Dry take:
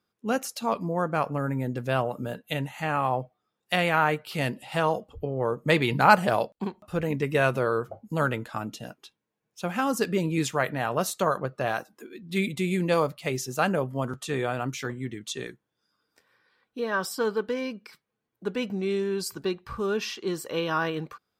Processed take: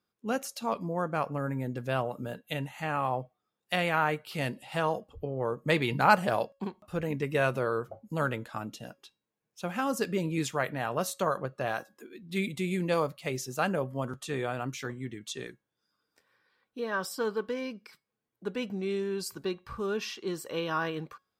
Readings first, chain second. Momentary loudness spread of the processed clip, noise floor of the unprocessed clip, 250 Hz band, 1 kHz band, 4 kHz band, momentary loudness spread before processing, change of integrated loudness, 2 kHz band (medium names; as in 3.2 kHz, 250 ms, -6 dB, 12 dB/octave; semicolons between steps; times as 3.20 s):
11 LU, -82 dBFS, -4.5 dB, -4.5 dB, -4.0 dB, 11 LU, -4.0 dB, -4.0 dB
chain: feedback comb 550 Hz, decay 0.33 s, mix 40%